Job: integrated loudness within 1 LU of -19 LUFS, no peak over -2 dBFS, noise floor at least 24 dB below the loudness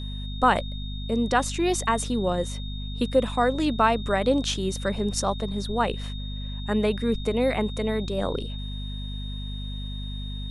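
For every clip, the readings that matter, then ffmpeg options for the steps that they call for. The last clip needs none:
hum 50 Hz; harmonics up to 250 Hz; hum level -30 dBFS; steady tone 3700 Hz; tone level -40 dBFS; loudness -26.5 LUFS; peak -7.5 dBFS; loudness target -19.0 LUFS
-> -af "bandreject=f=50:t=h:w=4,bandreject=f=100:t=h:w=4,bandreject=f=150:t=h:w=4,bandreject=f=200:t=h:w=4,bandreject=f=250:t=h:w=4"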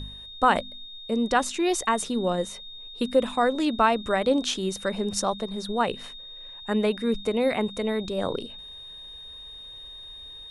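hum none; steady tone 3700 Hz; tone level -40 dBFS
-> -af "bandreject=f=3.7k:w=30"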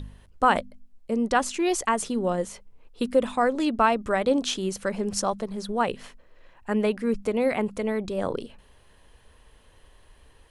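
steady tone none; loudness -26.0 LUFS; peak -7.5 dBFS; loudness target -19.0 LUFS
-> -af "volume=7dB,alimiter=limit=-2dB:level=0:latency=1"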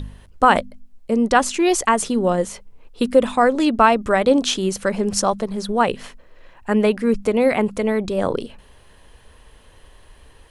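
loudness -19.0 LUFS; peak -2.0 dBFS; noise floor -50 dBFS

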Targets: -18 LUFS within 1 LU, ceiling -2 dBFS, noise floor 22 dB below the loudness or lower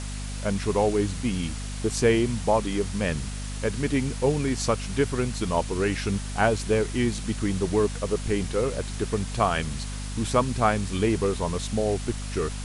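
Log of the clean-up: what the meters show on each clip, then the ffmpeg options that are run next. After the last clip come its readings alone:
hum 50 Hz; harmonics up to 250 Hz; hum level -31 dBFS; noise floor -33 dBFS; noise floor target -48 dBFS; loudness -26.0 LUFS; peak -7.0 dBFS; loudness target -18.0 LUFS
-> -af "bandreject=f=50:t=h:w=6,bandreject=f=100:t=h:w=6,bandreject=f=150:t=h:w=6,bandreject=f=200:t=h:w=6,bandreject=f=250:t=h:w=6"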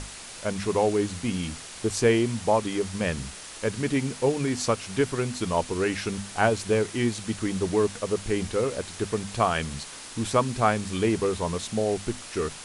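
hum none; noise floor -42 dBFS; noise floor target -49 dBFS
-> -af "afftdn=nr=7:nf=-42"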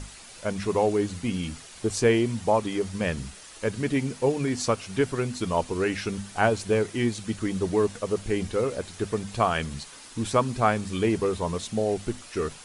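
noise floor -46 dBFS; noise floor target -49 dBFS
-> -af "afftdn=nr=6:nf=-46"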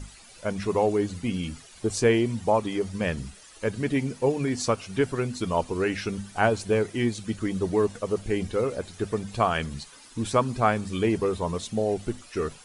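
noise floor -50 dBFS; loudness -27.0 LUFS; peak -7.0 dBFS; loudness target -18.0 LUFS
-> -af "volume=9dB,alimiter=limit=-2dB:level=0:latency=1"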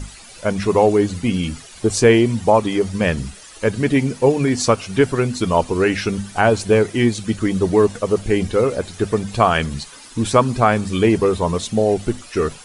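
loudness -18.5 LUFS; peak -2.0 dBFS; noise floor -41 dBFS

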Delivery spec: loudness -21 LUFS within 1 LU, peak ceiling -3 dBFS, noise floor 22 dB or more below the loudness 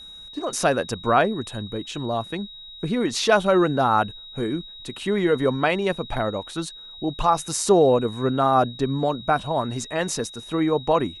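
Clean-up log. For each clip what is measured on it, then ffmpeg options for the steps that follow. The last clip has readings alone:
steady tone 3800 Hz; tone level -39 dBFS; loudness -23.0 LUFS; peak -5.0 dBFS; loudness target -21.0 LUFS
-> -af "bandreject=f=3.8k:w=30"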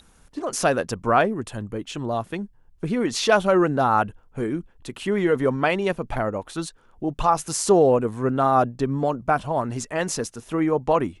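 steady tone none; loudness -23.0 LUFS; peak -5.5 dBFS; loudness target -21.0 LUFS
-> -af "volume=2dB"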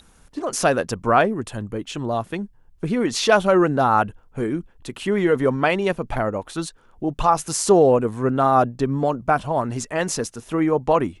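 loudness -21.0 LUFS; peak -3.5 dBFS; noise floor -53 dBFS

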